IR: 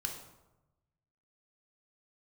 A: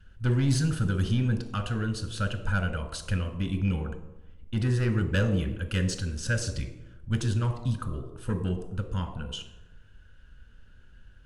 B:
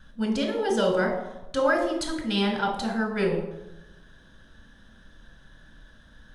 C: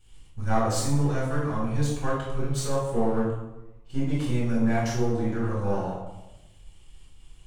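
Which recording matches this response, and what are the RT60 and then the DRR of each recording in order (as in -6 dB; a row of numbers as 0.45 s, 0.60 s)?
B; 1.0 s, 1.0 s, 1.0 s; 7.5 dB, 1.5 dB, -8.5 dB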